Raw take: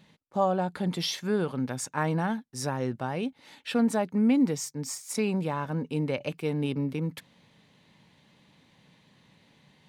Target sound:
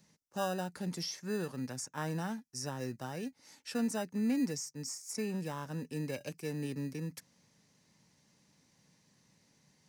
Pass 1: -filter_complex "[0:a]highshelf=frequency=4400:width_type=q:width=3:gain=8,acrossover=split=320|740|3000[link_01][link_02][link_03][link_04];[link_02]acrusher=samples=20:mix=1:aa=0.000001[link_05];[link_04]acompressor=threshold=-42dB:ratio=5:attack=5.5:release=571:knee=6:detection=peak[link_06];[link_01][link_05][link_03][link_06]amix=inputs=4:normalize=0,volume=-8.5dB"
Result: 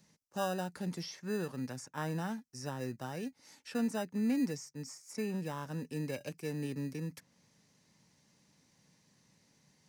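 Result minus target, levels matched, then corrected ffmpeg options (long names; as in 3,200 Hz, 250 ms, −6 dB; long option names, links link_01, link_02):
downward compressor: peak gain reduction +9 dB
-filter_complex "[0:a]highshelf=frequency=4400:width_type=q:width=3:gain=8,acrossover=split=320|740|3000[link_01][link_02][link_03][link_04];[link_02]acrusher=samples=20:mix=1:aa=0.000001[link_05];[link_04]acompressor=threshold=-30.5dB:ratio=5:attack=5.5:release=571:knee=6:detection=peak[link_06];[link_01][link_05][link_03][link_06]amix=inputs=4:normalize=0,volume=-8.5dB"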